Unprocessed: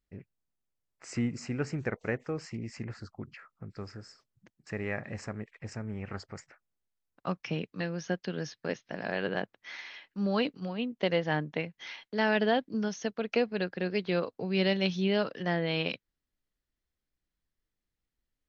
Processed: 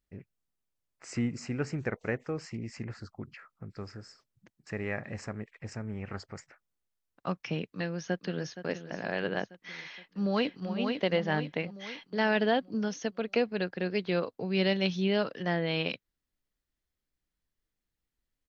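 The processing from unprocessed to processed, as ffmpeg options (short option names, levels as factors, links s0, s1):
-filter_complex "[0:a]asplit=2[s0][s1];[s1]afade=t=in:st=7.68:d=0.01,afade=t=out:st=8.59:d=0.01,aecho=0:1:470|940|1410|1880|2350|2820|3290:0.237137|0.142282|0.0853695|0.0512217|0.030733|0.0184398|0.0110639[s2];[s0][s2]amix=inputs=2:normalize=0,asplit=2[s3][s4];[s4]afade=t=in:st=9.86:d=0.01,afade=t=out:st=10.7:d=0.01,aecho=0:1:500|1000|1500|2000|2500|3000:0.562341|0.281171|0.140585|0.0702927|0.0351463|0.0175732[s5];[s3][s5]amix=inputs=2:normalize=0"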